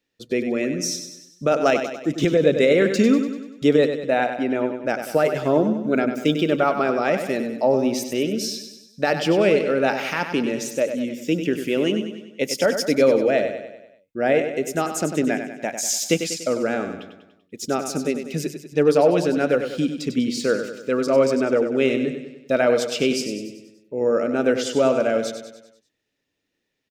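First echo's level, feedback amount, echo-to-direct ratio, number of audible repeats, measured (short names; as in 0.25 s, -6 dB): -8.5 dB, 52%, -7.0 dB, 5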